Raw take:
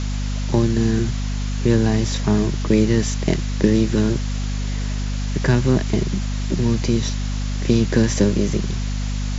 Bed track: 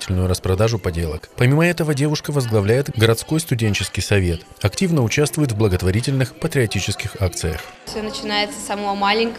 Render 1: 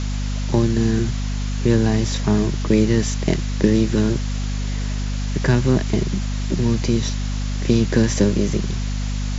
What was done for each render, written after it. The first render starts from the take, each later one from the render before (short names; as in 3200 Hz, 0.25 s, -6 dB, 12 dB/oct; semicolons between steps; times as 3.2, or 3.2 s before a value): nothing audible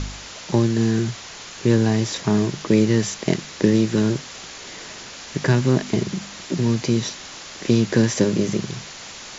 de-hum 50 Hz, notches 5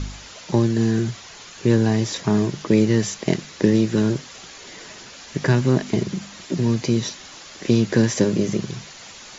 denoiser 6 dB, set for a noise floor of -38 dBFS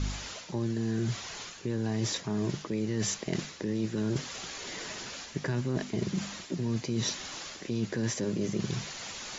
limiter -11 dBFS, peak gain reduction 8 dB; reverse; compressor, threshold -28 dBFS, peak gain reduction 12 dB; reverse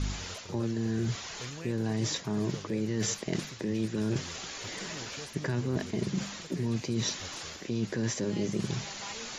add bed track -28.5 dB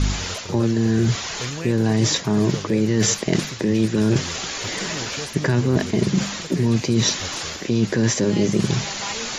gain +12 dB